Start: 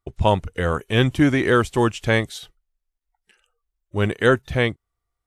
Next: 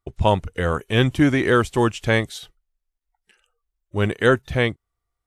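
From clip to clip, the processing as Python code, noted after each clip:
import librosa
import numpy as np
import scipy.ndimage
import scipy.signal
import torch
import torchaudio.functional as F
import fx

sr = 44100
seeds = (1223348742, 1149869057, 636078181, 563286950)

y = x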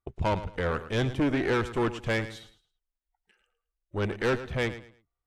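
y = fx.high_shelf(x, sr, hz=4500.0, db=-12.0)
y = fx.tube_stage(y, sr, drive_db=19.0, bias=0.7)
y = fx.echo_feedback(y, sr, ms=109, feedback_pct=26, wet_db=-13.5)
y = y * librosa.db_to_amplitude(-2.0)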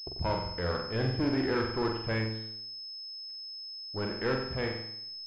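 y = fx.backlash(x, sr, play_db=-52.5)
y = fx.room_flutter(y, sr, wall_m=7.8, rt60_s=0.66)
y = fx.pwm(y, sr, carrier_hz=5200.0)
y = y * librosa.db_to_amplitude(-5.0)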